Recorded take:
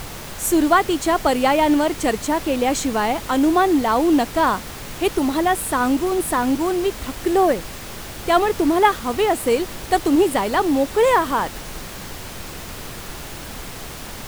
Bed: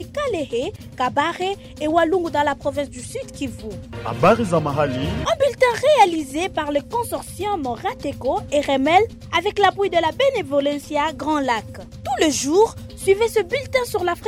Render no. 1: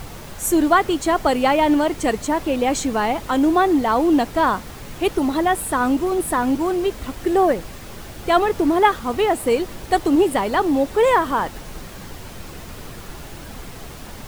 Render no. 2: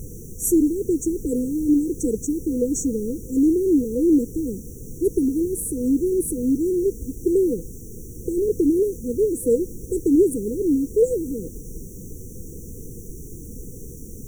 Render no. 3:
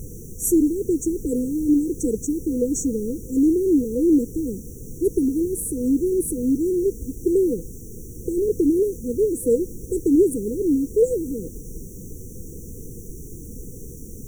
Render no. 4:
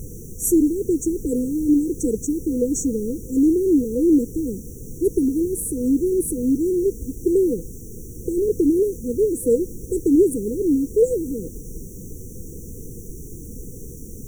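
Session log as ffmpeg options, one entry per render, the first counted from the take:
ffmpeg -i in.wav -af "afftdn=noise_reduction=6:noise_floor=-34" out.wav
ffmpeg -i in.wav -af "afftfilt=real='re*(1-between(b*sr/4096,510,5600))':imag='im*(1-between(b*sr/4096,510,5600))':win_size=4096:overlap=0.75" out.wav
ffmpeg -i in.wav -af anull out.wav
ffmpeg -i in.wav -af "volume=1dB" out.wav

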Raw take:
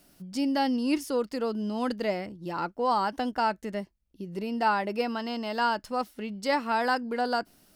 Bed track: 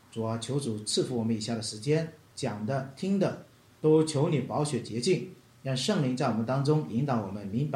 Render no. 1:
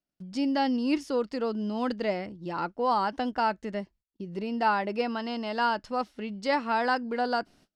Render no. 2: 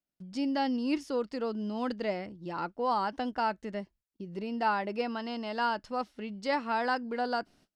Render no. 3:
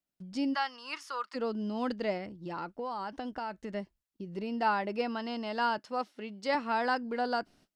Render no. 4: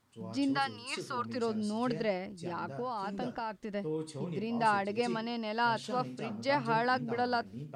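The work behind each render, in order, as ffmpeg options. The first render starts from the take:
ffmpeg -i in.wav -af "agate=range=-30dB:threshold=-55dB:ratio=16:detection=peak,lowpass=5600" out.wav
ffmpeg -i in.wav -af "volume=-3.5dB" out.wav
ffmpeg -i in.wav -filter_complex "[0:a]asplit=3[link_01][link_02][link_03];[link_01]afade=type=out:start_time=0.53:duration=0.02[link_04];[link_02]highpass=frequency=1200:width_type=q:width=3.6,afade=type=in:start_time=0.53:duration=0.02,afade=type=out:start_time=1.34:duration=0.02[link_05];[link_03]afade=type=in:start_time=1.34:duration=0.02[link_06];[link_04][link_05][link_06]amix=inputs=3:normalize=0,asettb=1/sr,asplit=3[link_07][link_08][link_09];[link_07]atrim=end=2.174[link_10];[link_08]atrim=start=2.17:end=3.73,asetpts=PTS-STARTPTS,afade=type=in:duration=0.004:curve=qsin,afade=type=out:start_time=1.556:duration=0.004:curve=qsin,acompressor=threshold=-33dB:ratio=6:attack=3.2:release=140:knee=1:detection=peak[link_11];[link_09]atrim=start=3.726[link_12];[link_10][link_11]acrossfade=duration=0.004:curve1=hsin:curve2=qsin[link_13];[link_13][link_12]acrossfade=duration=0.004:curve1=qsin:curve2=hsin,asettb=1/sr,asplit=3[link_14][link_15][link_16];[link_14]atrim=end=5.784[link_17];[link_15]atrim=start=5.78:end=6.55,asetpts=PTS-STARTPTS,afade=type=in:duration=0.004:curve=qsin,afade=type=out:start_time=0.766:duration=0.004:curve=qsin,highpass=240[link_18];[link_16]atrim=start=6.546[link_19];[link_17][link_18]acrossfade=duration=0.004:curve1=hsin:curve2=qsin[link_20];[link_20][link_19]acrossfade=duration=0.004:curve1=qsin:curve2=hsin" out.wav
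ffmpeg -i in.wav -i bed.wav -filter_complex "[1:a]volume=-14dB[link_01];[0:a][link_01]amix=inputs=2:normalize=0" out.wav

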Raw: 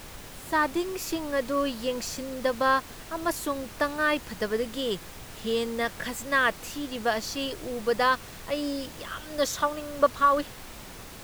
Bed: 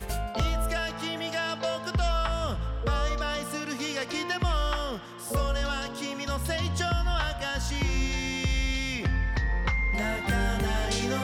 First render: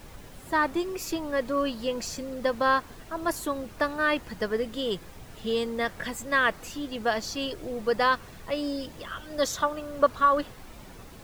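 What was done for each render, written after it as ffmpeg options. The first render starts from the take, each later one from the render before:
ffmpeg -i in.wav -af "afftdn=noise_reduction=8:noise_floor=-44" out.wav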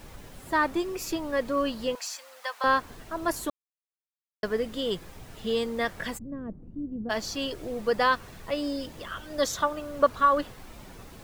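ffmpeg -i in.wav -filter_complex "[0:a]asettb=1/sr,asplit=3[link_01][link_02][link_03];[link_01]atrim=end=1.954[link_04];[link_02]atrim=start=1.95:end=2.64,asetpts=PTS-STARTPTS,afade=type=in:duration=0.004:curve=qsin,afade=type=out:start_time=0.686:duration=0.004:curve=qsin,highpass=frequency=810:width=0.5412,highpass=frequency=810:width=1.3066[link_05];[link_03]atrim=start=2.636[link_06];[link_04][link_05]acrossfade=duration=0.004:curve1=hsin:curve2=qsin[link_07];[link_07][link_06]acrossfade=duration=0.004:curve1=qsin:curve2=hsin,asplit=3[link_08][link_09][link_10];[link_08]afade=type=out:start_time=6.17:duration=0.02[link_11];[link_09]lowpass=frequency=230:width_type=q:width=1.5,afade=type=in:start_time=6.17:duration=0.02,afade=type=out:start_time=7.09:duration=0.02[link_12];[link_10]afade=type=in:start_time=7.09:duration=0.02[link_13];[link_11][link_12][link_13]amix=inputs=3:normalize=0,asplit=3[link_14][link_15][link_16];[link_14]atrim=end=3.5,asetpts=PTS-STARTPTS,afade=type=out:start_time=3.496:duration=0.004:curve=hsin[link_17];[link_15]atrim=start=3.5:end=4.43,asetpts=PTS-STARTPTS,volume=0[link_18];[link_16]atrim=start=4.43,asetpts=PTS-STARTPTS,afade=type=in:duration=0.004:curve=hsin[link_19];[link_17][link_18][link_19]concat=n=3:v=0:a=1" out.wav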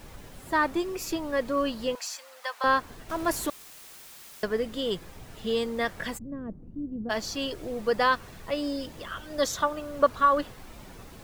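ffmpeg -i in.wav -filter_complex "[0:a]asettb=1/sr,asplit=3[link_01][link_02][link_03];[link_01]atrim=end=3.094[link_04];[link_02]atrim=start=3.09:end=4.45,asetpts=PTS-STARTPTS,afade=type=in:duration=0.004:curve=qsin,afade=type=out:start_time=1.356:duration=0.004:curve=qsin,aeval=exprs='val(0)+0.5*0.0158*sgn(val(0))':channel_layout=same[link_05];[link_03]atrim=start=4.446[link_06];[link_04][link_05]acrossfade=duration=0.004:curve1=hsin:curve2=qsin[link_07];[link_07][link_06]acrossfade=duration=0.004:curve1=qsin:curve2=hsin" out.wav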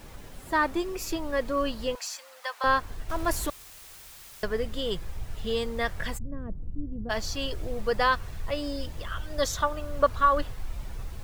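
ffmpeg -i in.wav -af "asubboost=boost=6.5:cutoff=89" out.wav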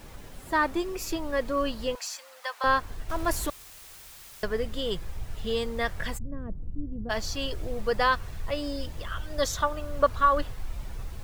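ffmpeg -i in.wav -af anull out.wav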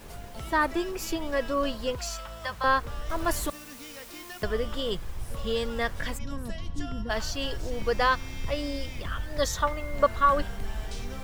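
ffmpeg -i in.wav -i bed.wav -filter_complex "[1:a]volume=-13dB[link_01];[0:a][link_01]amix=inputs=2:normalize=0" out.wav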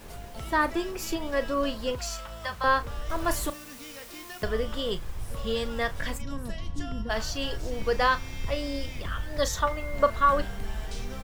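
ffmpeg -i in.wav -filter_complex "[0:a]asplit=2[link_01][link_02];[link_02]adelay=36,volume=-13dB[link_03];[link_01][link_03]amix=inputs=2:normalize=0" out.wav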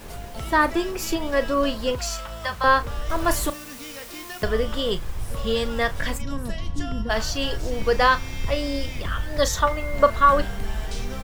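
ffmpeg -i in.wav -af "volume=5.5dB" out.wav

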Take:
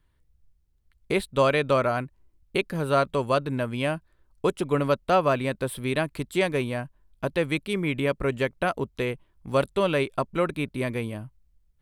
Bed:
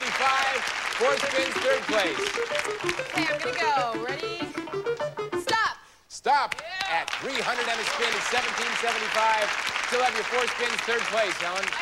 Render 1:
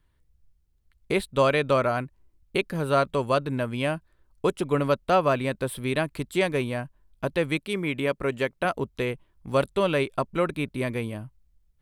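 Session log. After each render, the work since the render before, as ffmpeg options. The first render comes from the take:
ffmpeg -i in.wav -filter_complex "[0:a]asettb=1/sr,asplit=3[link_01][link_02][link_03];[link_01]atrim=end=7.574[link_04];[link_02]atrim=start=7.57:end=8.65,asetpts=PTS-STARTPTS,afade=type=in:duration=0.004:curve=qsin,afade=type=out:start_time=1.076:duration=0.004:curve=qsin,lowshelf=frequency=120:gain=-9[link_05];[link_03]atrim=start=8.646[link_06];[link_04][link_05]acrossfade=duration=0.004:curve1=hsin:curve2=qsin[link_07];[link_07][link_06]acrossfade=duration=0.004:curve1=qsin:curve2=hsin" out.wav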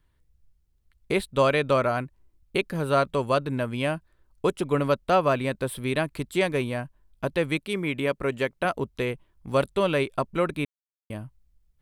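ffmpeg -i in.wav -filter_complex "[0:a]asplit=3[link_01][link_02][link_03];[link_01]atrim=end=10.65,asetpts=PTS-STARTPTS,afade=type=out:start_time=10.646:duration=0.004:curve=hsin[link_04];[link_02]atrim=start=10.65:end=11.1,asetpts=PTS-STARTPTS,volume=0[link_05];[link_03]atrim=start=11.1,asetpts=PTS-STARTPTS,afade=type=in:duration=0.004:curve=hsin[link_06];[link_04][link_05][link_06]concat=n=3:v=0:a=1" out.wav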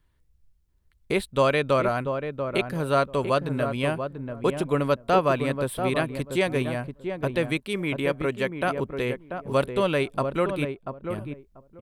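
ffmpeg -i in.wav -filter_complex "[0:a]asplit=2[link_01][link_02];[link_02]adelay=688,lowpass=frequency=1000:poles=1,volume=-6dB,asplit=2[link_03][link_04];[link_04]adelay=688,lowpass=frequency=1000:poles=1,volume=0.18,asplit=2[link_05][link_06];[link_06]adelay=688,lowpass=frequency=1000:poles=1,volume=0.18[link_07];[link_01][link_03][link_05][link_07]amix=inputs=4:normalize=0" out.wav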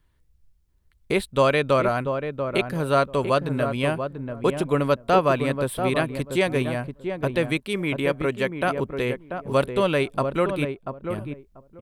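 ffmpeg -i in.wav -af "volume=2dB" out.wav

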